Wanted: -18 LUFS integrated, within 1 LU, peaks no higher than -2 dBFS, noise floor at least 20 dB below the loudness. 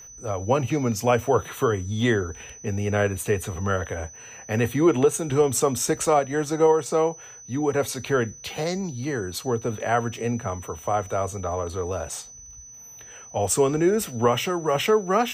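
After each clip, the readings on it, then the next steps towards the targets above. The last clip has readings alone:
tick rate 17 per s; steady tone 6 kHz; tone level -42 dBFS; loudness -24.5 LUFS; peak level -8.5 dBFS; loudness target -18.0 LUFS
-> de-click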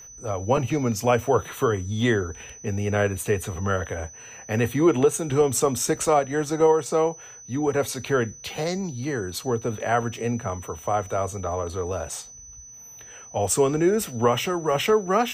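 tick rate 0 per s; steady tone 6 kHz; tone level -42 dBFS
-> band-stop 6 kHz, Q 30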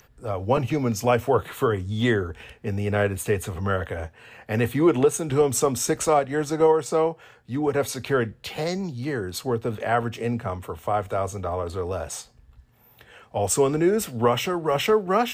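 steady tone not found; loudness -24.5 LUFS; peak level -9.0 dBFS; loudness target -18.0 LUFS
-> trim +6.5 dB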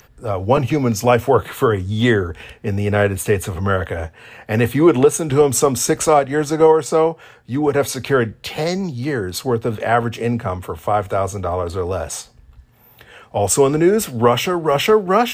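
loudness -18.0 LUFS; peak level -2.5 dBFS; noise floor -49 dBFS

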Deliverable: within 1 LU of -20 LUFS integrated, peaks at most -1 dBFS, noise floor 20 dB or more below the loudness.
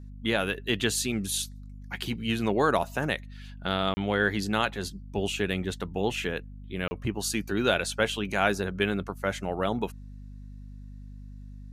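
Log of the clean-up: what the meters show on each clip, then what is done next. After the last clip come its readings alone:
dropouts 2; longest dropout 30 ms; hum 50 Hz; highest harmonic 250 Hz; hum level -40 dBFS; loudness -29.0 LUFS; peak level -8.0 dBFS; loudness target -20.0 LUFS
-> interpolate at 3.94/6.88 s, 30 ms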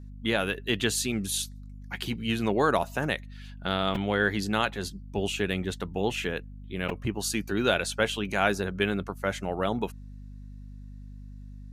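dropouts 0; hum 50 Hz; highest harmonic 250 Hz; hum level -40 dBFS
-> de-hum 50 Hz, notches 5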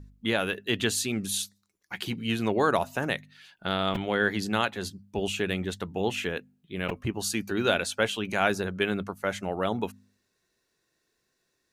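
hum not found; loudness -29.0 LUFS; peak level -7.5 dBFS; loudness target -20.0 LUFS
-> trim +9 dB; peak limiter -1 dBFS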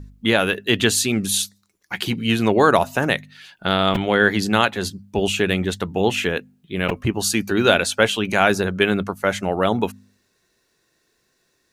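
loudness -20.0 LUFS; peak level -1.0 dBFS; noise floor -68 dBFS

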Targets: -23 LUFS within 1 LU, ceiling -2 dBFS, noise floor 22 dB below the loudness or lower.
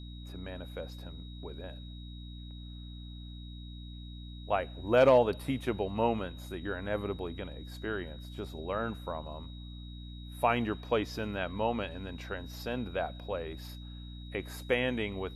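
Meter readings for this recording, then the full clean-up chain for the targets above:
hum 60 Hz; highest harmonic 300 Hz; hum level -42 dBFS; steady tone 3.8 kHz; tone level -53 dBFS; loudness -33.0 LUFS; peak level -13.5 dBFS; loudness target -23.0 LUFS
-> hum notches 60/120/180/240/300 Hz; band-stop 3.8 kHz, Q 30; trim +10 dB

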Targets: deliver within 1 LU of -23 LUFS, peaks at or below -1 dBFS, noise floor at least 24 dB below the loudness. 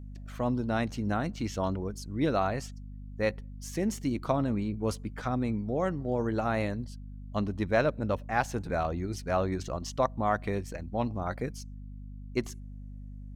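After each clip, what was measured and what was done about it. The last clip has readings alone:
hum 50 Hz; highest harmonic 250 Hz; hum level -40 dBFS; loudness -31.5 LUFS; peak level -13.0 dBFS; loudness target -23.0 LUFS
-> hum notches 50/100/150/200/250 Hz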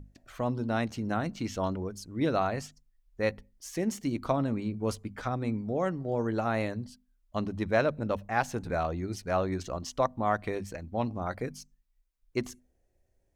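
hum not found; loudness -32.0 LUFS; peak level -13.0 dBFS; loudness target -23.0 LUFS
-> trim +9 dB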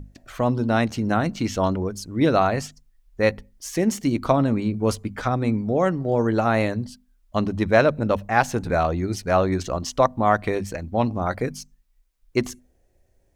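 loudness -23.0 LUFS; peak level -4.0 dBFS; noise floor -63 dBFS

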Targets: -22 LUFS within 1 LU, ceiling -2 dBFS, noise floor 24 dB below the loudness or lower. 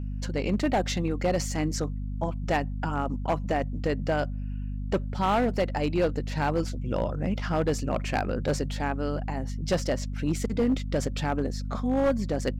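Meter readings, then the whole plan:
clipped samples 1.3%; clipping level -18.5 dBFS; hum 50 Hz; highest harmonic 250 Hz; hum level -30 dBFS; loudness -28.5 LUFS; peak level -18.5 dBFS; loudness target -22.0 LUFS
-> clip repair -18.5 dBFS; de-hum 50 Hz, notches 5; trim +6.5 dB

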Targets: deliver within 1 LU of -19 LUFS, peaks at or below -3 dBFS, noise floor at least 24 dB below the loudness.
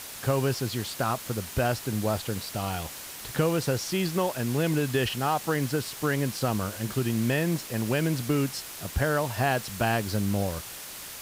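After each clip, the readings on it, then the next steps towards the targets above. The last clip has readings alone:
noise floor -41 dBFS; noise floor target -52 dBFS; loudness -28.0 LUFS; peak level -12.5 dBFS; loudness target -19.0 LUFS
-> noise reduction 11 dB, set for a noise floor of -41 dBFS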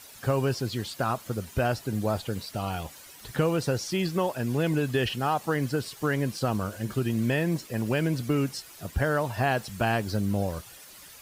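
noise floor -49 dBFS; noise floor target -53 dBFS
-> noise reduction 6 dB, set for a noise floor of -49 dBFS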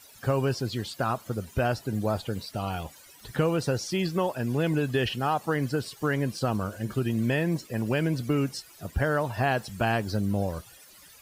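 noise floor -52 dBFS; noise floor target -53 dBFS
-> noise reduction 6 dB, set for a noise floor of -52 dBFS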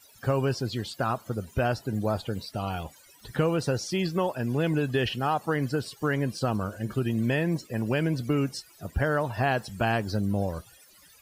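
noise floor -56 dBFS; loudness -28.5 LUFS; peak level -13.0 dBFS; loudness target -19.0 LUFS
-> trim +9.5 dB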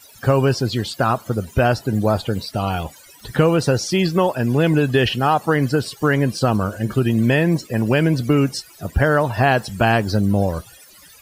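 loudness -19.0 LUFS; peak level -3.5 dBFS; noise floor -46 dBFS

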